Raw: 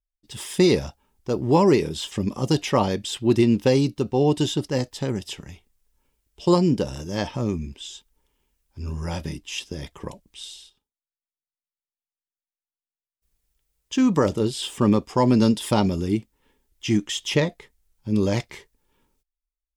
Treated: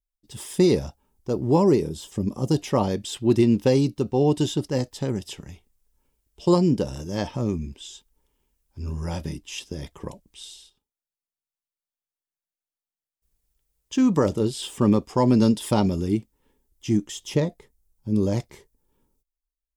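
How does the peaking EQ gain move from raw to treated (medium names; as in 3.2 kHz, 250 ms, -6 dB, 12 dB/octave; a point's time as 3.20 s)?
peaking EQ 2.4 kHz 2.5 oct
1.43 s -7.5 dB
2.04 s -14.5 dB
3.12 s -4.5 dB
16.11 s -4.5 dB
16.93 s -11.5 dB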